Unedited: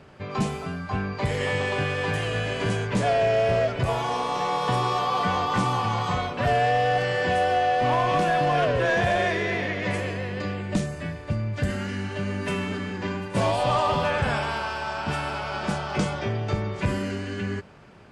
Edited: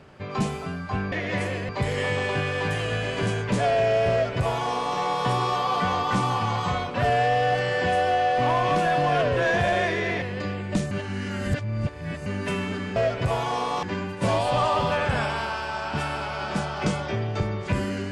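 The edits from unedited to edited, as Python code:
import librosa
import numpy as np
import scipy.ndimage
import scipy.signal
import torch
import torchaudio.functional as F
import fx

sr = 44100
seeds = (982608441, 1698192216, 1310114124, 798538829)

y = fx.edit(x, sr, fx.duplicate(start_s=3.54, length_s=0.87, to_s=12.96),
    fx.move(start_s=9.65, length_s=0.57, to_s=1.12),
    fx.reverse_span(start_s=10.91, length_s=1.35), tone=tone)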